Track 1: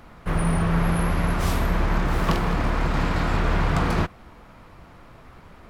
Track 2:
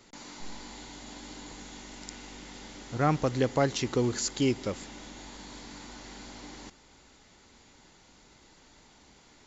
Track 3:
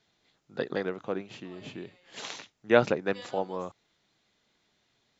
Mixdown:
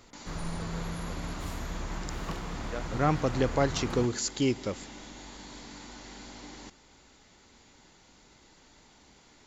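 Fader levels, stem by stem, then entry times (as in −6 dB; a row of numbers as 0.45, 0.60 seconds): −14.5, −0.5, −18.5 decibels; 0.00, 0.00, 0.00 seconds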